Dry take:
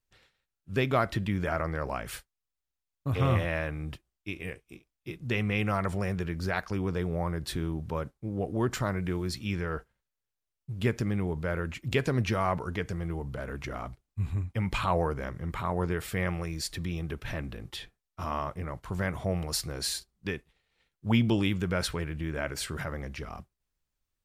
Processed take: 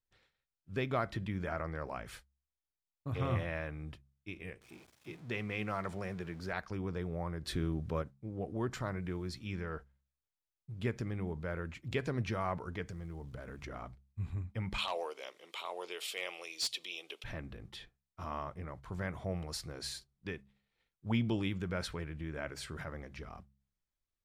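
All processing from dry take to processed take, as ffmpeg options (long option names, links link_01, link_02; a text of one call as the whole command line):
ffmpeg -i in.wav -filter_complex "[0:a]asettb=1/sr,asplit=3[link_01][link_02][link_03];[link_01]atrim=end=4.614[link_04];[link_02]atrim=start=4.61:end=6.53,asetpts=PTS-STARTPTS,afade=type=in:duration=0.004:curve=qsin,afade=type=out:start_time=1.916:duration=0.004:curve=qsin,aeval=exprs='val(0)+0.5*0.00631*sgn(val(0))':channel_layout=same,highpass=93,lowshelf=frequency=180:gain=-4[link_05];[link_03]atrim=start=6.526[link_06];[link_04][link_05]acrossfade=duration=0.004:curve1=hsin:curve2=qsin[link_07];[link_07][link_06]acrossfade=duration=0.004:curve1=qsin:curve2=hsin,asettb=1/sr,asplit=3[link_08][link_09][link_10];[link_08]atrim=end=7.454[link_11];[link_09]atrim=start=7.45:end=8.02,asetpts=PTS-STARTPTS,afade=type=in:duration=0.004:curve=qsin,afade=type=out:start_time=0.566:duration=0.004:curve=qsin,equalizer=frequency=890:width=8:gain=-10.5,acontrast=30[link_12];[link_10]atrim=start=8.016[link_13];[link_11][link_12]acrossfade=duration=0.004:curve1=hsin:curve2=qsin[link_14];[link_14][link_13]acrossfade=duration=0.004:curve1=qsin:curve2=hsin,asettb=1/sr,asplit=3[link_15][link_16][link_17];[link_15]atrim=end=12.884[link_18];[link_16]atrim=start=12.88:end=13.66,asetpts=PTS-STARTPTS,afade=type=in:duration=0.004:curve=qsin,afade=type=out:start_time=0.776:duration=0.004:curve=qsin,bass=frequency=250:gain=3,treble=frequency=4000:gain=4,acompressor=threshold=-33dB:ratio=5:attack=3.2:release=140:knee=1:detection=peak,acrusher=bits=8:mode=log:mix=0:aa=0.000001[link_19];[link_17]atrim=start=13.656[link_20];[link_18][link_19]acrossfade=duration=0.004:curve1=hsin:curve2=qsin[link_21];[link_21][link_20]acrossfade=duration=0.004:curve1=qsin:curve2=hsin,asettb=1/sr,asplit=3[link_22][link_23][link_24];[link_22]atrim=end=14.784[link_25];[link_23]atrim=start=14.78:end=17.24,asetpts=PTS-STARTPTS,afade=type=in:duration=0.004:curve=qsin,afade=type=out:start_time=2.456:duration=0.004:curve=qsin,highpass=frequency=430:width=0.5412,highpass=frequency=430:width=1.3066,highshelf=frequency=2200:width_type=q:width=3:gain=9.5,asoftclip=type=hard:threshold=-19dB[link_26];[link_24]atrim=start=17.236[link_27];[link_25][link_26]acrossfade=duration=0.004:curve1=hsin:curve2=qsin[link_28];[link_28][link_27]acrossfade=duration=0.004:curve1=qsin:curve2=hsin,highshelf=frequency=10000:gain=-12,bandreject=frequency=2800:width=24,bandreject=frequency=67.89:width_type=h:width=4,bandreject=frequency=135.78:width_type=h:width=4,bandreject=frequency=203.67:width_type=h:width=4,volume=-7.5dB" out.wav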